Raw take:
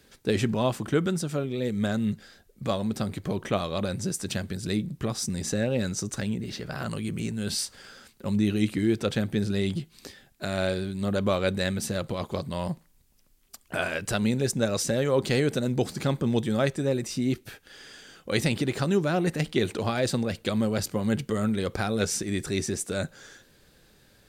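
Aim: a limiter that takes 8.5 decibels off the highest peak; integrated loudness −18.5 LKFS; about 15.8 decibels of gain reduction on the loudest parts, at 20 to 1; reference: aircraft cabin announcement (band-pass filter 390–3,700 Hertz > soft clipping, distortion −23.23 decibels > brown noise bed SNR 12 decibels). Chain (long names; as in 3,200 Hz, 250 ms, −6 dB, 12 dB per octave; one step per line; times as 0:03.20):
downward compressor 20 to 1, threshold −35 dBFS
brickwall limiter −31 dBFS
band-pass filter 390–3,700 Hz
soft clipping −32.5 dBFS
brown noise bed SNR 12 dB
level +29 dB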